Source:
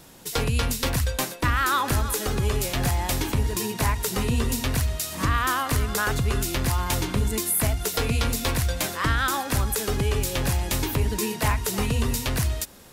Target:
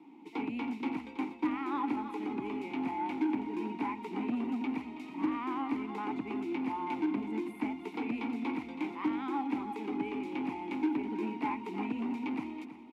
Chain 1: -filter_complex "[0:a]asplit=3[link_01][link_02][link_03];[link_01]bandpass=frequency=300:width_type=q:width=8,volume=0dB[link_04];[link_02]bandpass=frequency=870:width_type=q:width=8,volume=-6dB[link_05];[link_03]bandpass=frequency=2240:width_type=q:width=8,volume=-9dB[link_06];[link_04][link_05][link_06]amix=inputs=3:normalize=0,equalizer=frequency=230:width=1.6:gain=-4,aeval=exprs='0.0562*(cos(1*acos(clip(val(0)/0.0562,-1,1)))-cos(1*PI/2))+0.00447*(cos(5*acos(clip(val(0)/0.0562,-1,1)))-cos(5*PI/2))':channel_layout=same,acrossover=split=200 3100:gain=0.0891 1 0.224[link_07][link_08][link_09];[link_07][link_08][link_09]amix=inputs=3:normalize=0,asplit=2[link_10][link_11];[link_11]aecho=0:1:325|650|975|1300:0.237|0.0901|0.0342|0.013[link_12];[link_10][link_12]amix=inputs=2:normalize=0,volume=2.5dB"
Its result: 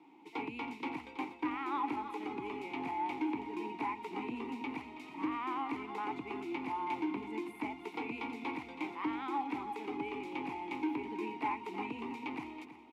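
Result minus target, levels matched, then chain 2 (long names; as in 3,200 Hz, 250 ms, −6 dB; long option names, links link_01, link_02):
250 Hz band −3.0 dB
-filter_complex "[0:a]asplit=3[link_01][link_02][link_03];[link_01]bandpass=frequency=300:width_type=q:width=8,volume=0dB[link_04];[link_02]bandpass=frequency=870:width_type=q:width=8,volume=-6dB[link_05];[link_03]bandpass=frequency=2240:width_type=q:width=8,volume=-9dB[link_06];[link_04][link_05][link_06]amix=inputs=3:normalize=0,equalizer=frequency=230:width=1.6:gain=7.5,aeval=exprs='0.0562*(cos(1*acos(clip(val(0)/0.0562,-1,1)))-cos(1*PI/2))+0.00447*(cos(5*acos(clip(val(0)/0.0562,-1,1)))-cos(5*PI/2))':channel_layout=same,acrossover=split=200 3100:gain=0.0891 1 0.224[link_07][link_08][link_09];[link_07][link_08][link_09]amix=inputs=3:normalize=0,asplit=2[link_10][link_11];[link_11]aecho=0:1:325|650|975|1300:0.237|0.0901|0.0342|0.013[link_12];[link_10][link_12]amix=inputs=2:normalize=0,volume=2.5dB"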